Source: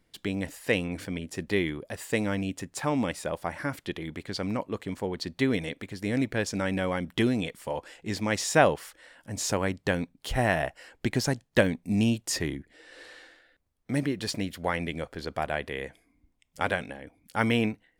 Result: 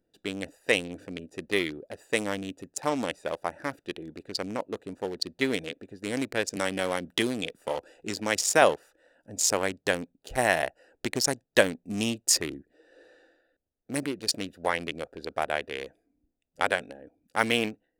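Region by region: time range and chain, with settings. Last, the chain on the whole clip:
6.56–8.62 s: treble shelf 9 kHz +4 dB + three bands compressed up and down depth 40%
whole clip: local Wiener filter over 41 samples; tone controls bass -14 dB, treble +10 dB; trim +3 dB

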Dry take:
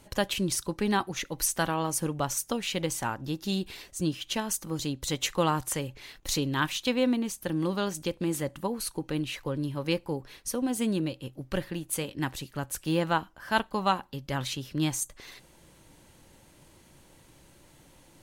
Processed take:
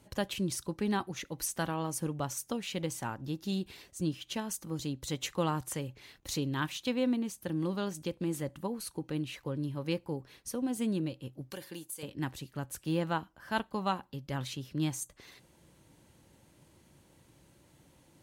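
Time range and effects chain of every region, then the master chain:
11.50–12.03 s: tone controls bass -12 dB, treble +13 dB + compression, threshold -30 dBFS + comb of notches 650 Hz
whole clip: high-pass 63 Hz; bass shelf 390 Hz +5.5 dB; trim -7.5 dB

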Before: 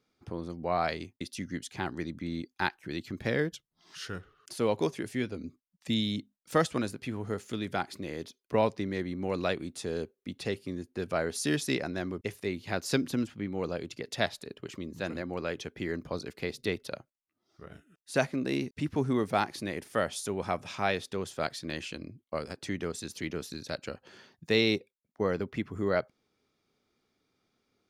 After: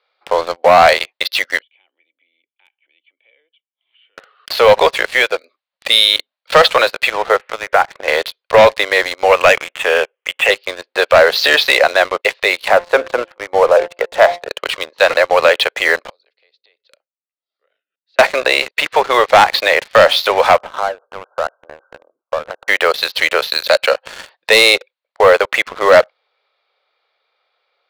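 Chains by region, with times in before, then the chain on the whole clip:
1.62–4.18 s: compression 2.5:1, threshold -46 dBFS + cascade formant filter i + peaking EQ 210 Hz -14.5 dB 1.8 oct
7.36–8.08 s: low-pass 2.2 kHz 24 dB/octave + compression 2:1, threshold -38 dBFS
9.32–10.50 s: steep low-pass 3.2 kHz 96 dB/octave + tilt EQ +3 dB/octave
12.68–14.49 s: low-pass 1.3 kHz + de-hum 174.8 Hz, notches 6
16.10–18.19 s: amplifier tone stack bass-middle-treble 10-0-1 + compression 12:1, threshold -54 dBFS
20.57–22.68 s: compression 4:1, threshold -44 dBFS + brick-wall FIR low-pass 1.6 kHz
whole clip: Chebyshev band-pass 520–4300 Hz, order 4; waveshaping leveller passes 3; loudness maximiser +20.5 dB; trim -1 dB

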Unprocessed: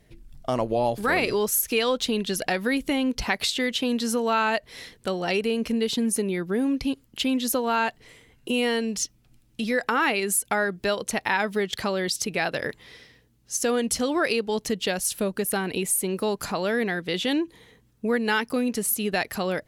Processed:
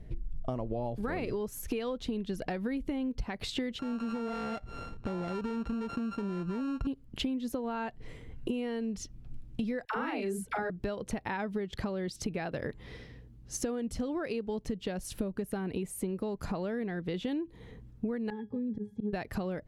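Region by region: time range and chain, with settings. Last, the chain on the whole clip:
3.79–6.87 s: sorted samples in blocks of 32 samples + compression 3:1, threshold -34 dBFS + distance through air 68 m
9.85–10.70 s: doubling 41 ms -2.5 dB + phase dispersion lows, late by 86 ms, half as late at 510 Hz
18.30–19.13 s: low-pass 8.7 kHz + pitch-class resonator G#, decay 0.13 s + slow attack 124 ms
whole clip: tilt EQ -3.5 dB/octave; compression 10:1, threshold -31 dBFS

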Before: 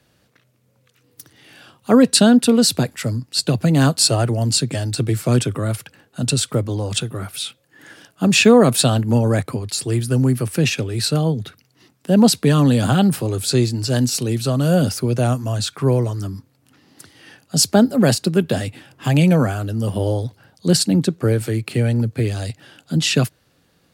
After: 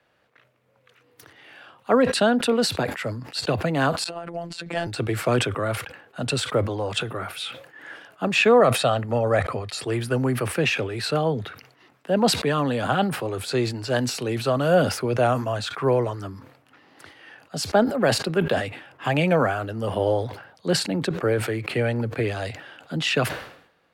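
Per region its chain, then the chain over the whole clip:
4.04–4.87 s: treble shelf 9.5 kHz -8.5 dB + robot voice 170 Hz + compressor with a negative ratio -26 dBFS, ratio -0.5
8.60–9.81 s: low-pass 11 kHz + comb 1.6 ms, depth 35%
whole clip: level rider gain up to 5.5 dB; three-band isolator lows -14 dB, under 440 Hz, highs -17 dB, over 2.9 kHz; decay stretcher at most 86 dB/s

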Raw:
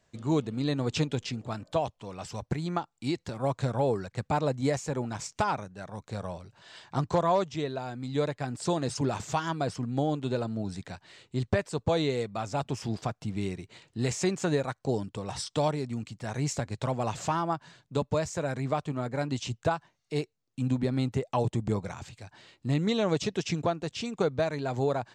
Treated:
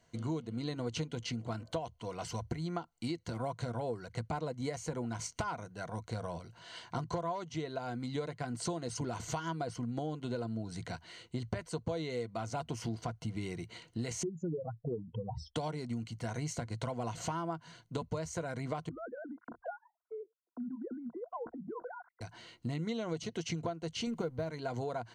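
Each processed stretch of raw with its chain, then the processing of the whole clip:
14.23–15.56 s: spectral contrast enhancement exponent 3.6 + low-pass 2.7 kHz
18.89–22.21 s: formants replaced by sine waves + steep low-pass 1.6 kHz 72 dB/octave + compression 3:1, threshold -44 dBFS
24.07–24.51 s: companding laws mixed up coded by mu + tilt EQ -1.5 dB/octave
whole clip: rippled EQ curve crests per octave 1.9, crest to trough 9 dB; compression 6:1, threshold -34 dBFS

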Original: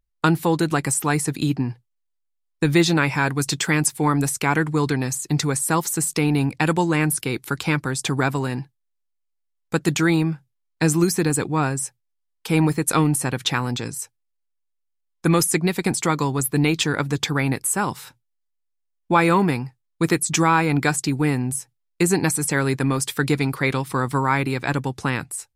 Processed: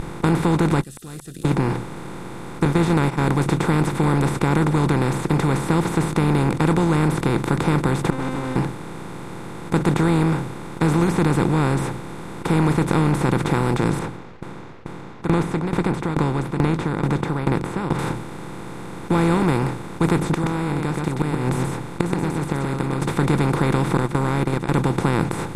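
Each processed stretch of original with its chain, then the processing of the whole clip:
0.81–1.45 s: block-companded coder 7-bit + inverse Chebyshev high-pass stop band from 2.4 kHz, stop band 80 dB + slow attack 175 ms
2.65–3.29 s: gate -21 dBFS, range -36 dB + tape noise reduction on one side only decoder only
8.10–8.56 s: comb filter that takes the minimum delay 3.3 ms + distance through air 51 m + feedback comb 260 Hz, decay 0.69 s, mix 100%
13.99–17.99 s: low-pass 2.3 kHz + sawtooth tremolo in dB decaying 2.3 Hz, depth 33 dB
20.31–23.02 s: inverted gate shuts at -13 dBFS, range -27 dB + delay 126 ms -9 dB
23.97–24.74 s: gate -22 dBFS, range -32 dB + compression, threshold -23 dBFS
whole clip: spectral levelling over time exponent 0.2; tilt EQ -3.5 dB/octave; trim -12 dB

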